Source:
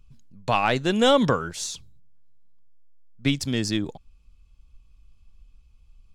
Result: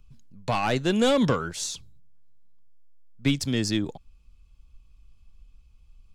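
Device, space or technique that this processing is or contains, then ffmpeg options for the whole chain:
one-band saturation: -filter_complex "[0:a]acrossover=split=400|4800[s0][s1][s2];[s1]asoftclip=type=tanh:threshold=0.0891[s3];[s0][s3][s2]amix=inputs=3:normalize=0"

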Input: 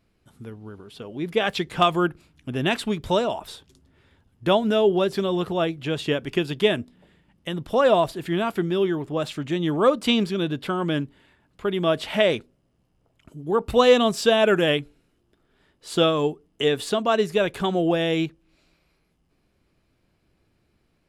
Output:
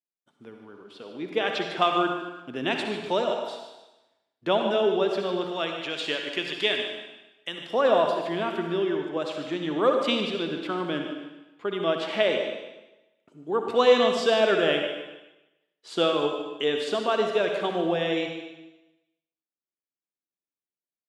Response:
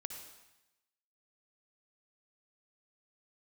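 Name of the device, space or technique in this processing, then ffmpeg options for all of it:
supermarket ceiling speaker: -filter_complex "[0:a]highpass=87,agate=range=0.0224:threshold=0.00355:ratio=3:detection=peak,asettb=1/sr,asplit=3[s0][s1][s2];[s0]atrim=end=5.494[s3];[s1]atrim=start=5.49:end=7.71,asetpts=PTS-STARTPTS,afade=t=in:d=0.004:c=qsin,afade=t=out:st=2.216:d=0.004:c=qsin,tiltshelf=f=1200:g=-6.5[s4];[s2]atrim=start=7.706[s5];[s3][s4]acrossfade=d=0.004:c1=hsin:c2=qsin[s6];[s6][s5]acrossfade=d=0.004:c1=qsin:c2=hsin,highpass=260,lowpass=5800[s7];[1:a]atrim=start_sample=2205[s8];[s7][s8]afir=irnorm=-1:irlink=0,aecho=1:1:149|298|447:0.251|0.0703|0.0197"

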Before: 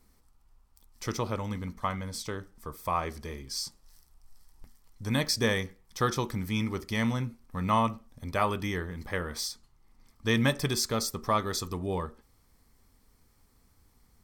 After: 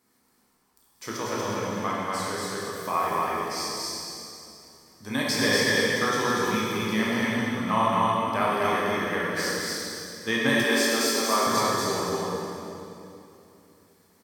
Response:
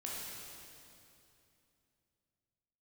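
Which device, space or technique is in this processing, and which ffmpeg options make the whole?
stadium PA: -filter_complex "[0:a]highpass=210,equalizer=f=1700:t=o:w=0.2:g=5,aecho=1:1:239.1|282.8:0.794|0.316[s0];[1:a]atrim=start_sample=2205[s1];[s0][s1]afir=irnorm=-1:irlink=0,asettb=1/sr,asplit=3[s2][s3][s4];[s2]atrim=end=10.644[s5];[s3]atrim=start=10.64:end=11.47,asetpts=PTS-STARTPTS,afade=t=in:d=0.004:c=qsin,afade=t=out:st=0.826:d=0.004:c=qsin,highpass=f=240:w=0.5412,highpass=f=240:w=1.3066[s6];[s4]atrim=start=11.466[s7];[s5][s6]acrossfade=d=0.004:c1=hsin:c2=qsin[s8];[s8][s7]acrossfade=d=0.004:c1=qsin:c2=hsin,volume=1.5"

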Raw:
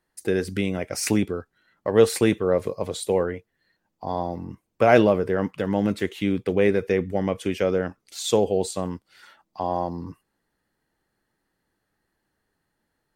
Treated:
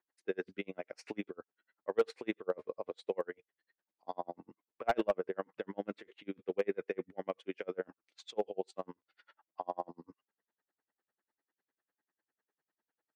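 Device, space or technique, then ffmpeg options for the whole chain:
helicopter radio: -filter_complex "[0:a]highpass=340,lowpass=2700,aeval=exprs='val(0)*pow(10,-39*(0.5-0.5*cos(2*PI*10*n/s))/20)':c=same,asoftclip=type=hard:threshold=0.178,asettb=1/sr,asplit=3[s0][s1][s2];[s0]atrim=end=3.174[s3];[s1]atrim=start=3.17:end=4.17,asetpts=PTS-STARTPTS,afade=t=in:d=0.004:c=qsin,afade=t=out:st=0.996:d=0.004:c=qsin,aemphasis=mode=production:type=75fm[s4];[s2]atrim=start=4.166[s5];[s3][s4]acrossfade=d=0.004:c1=hsin:c2=qsin[s6];[s6][s5]acrossfade=d=0.004:c1=qsin:c2=hsin,volume=0.501"

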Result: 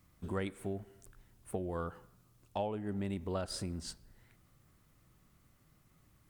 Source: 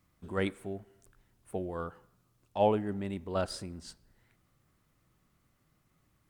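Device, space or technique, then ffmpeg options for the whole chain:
ASMR close-microphone chain: -af "lowshelf=f=160:g=4.5,acompressor=threshold=0.0178:ratio=10,highshelf=f=6100:g=4,volume=1.26"

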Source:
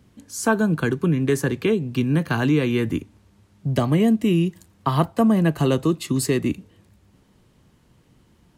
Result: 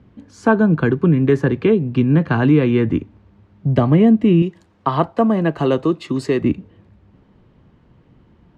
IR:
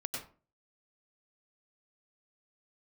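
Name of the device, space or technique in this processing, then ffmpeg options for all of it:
phone in a pocket: -filter_complex "[0:a]asettb=1/sr,asplit=3[s0][s1][s2];[s0]atrim=end=4.424[s3];[s1]atrim=start=4.42:end=6.42,asetpts=PTS-STARTPTS,afade=t=in:d=0.004:c=qsin,afade=t=out:st=1.996:d=0.004:c=qsin,bass=f=250:g=-9,treble=f=4000:g=5[s4];[s2]atrim=start=6.416[s5];[s3][s4]acrossfade=d=0.004:c1=hsin:c2=qsin[s6];[s6][s5]acrossfade=d=0.004:c1=qsin:c2=hsin,lowpass=3700,highshelf=f=2400:g=-10.5,volume=2"

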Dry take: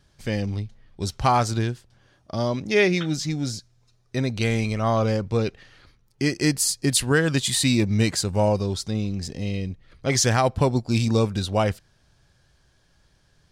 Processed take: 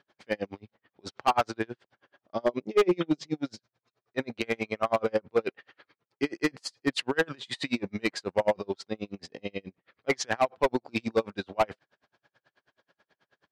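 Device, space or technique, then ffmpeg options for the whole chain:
helicopter radio: -filter_complex "[0:a]asettb=1/sr,asplit=3[s0][s1][s2];[s0]atrim=end=2.444[s3];[s1]atrim=start=2.44:end=3.34,asetpts=PTS-STARTPTS,afade=t=in:d=0.004:c=qsin,afade=t=out:st=0.896:d=0.004:c=qsin,equalizer=f=160:t=o:w=0.67:g=4,equalizer=f=400:t=o:w=0.67:g=8,equalizer=f=1600:t=o:w=0.67:g=-9,equalizer=f=4000:t=o:w=0.67:g=-3[s4];[s2]atrim=start=3.336[s5];[s3][s4]acrossfade=d=0.004:c1=hsin:c2=qsin[s6];[s6][s5]acrossfade=d=0.004:c1=qsin:c2=hsin,highpass=380,lowpass=2500,aeval=exprs='val(0)*pow(10,-38*(0.5-0.5*cos(2*PI*9.3*n/s))/20)':c=same,asoftclip=type=hard:threshold=0.0708,volume=2.11"

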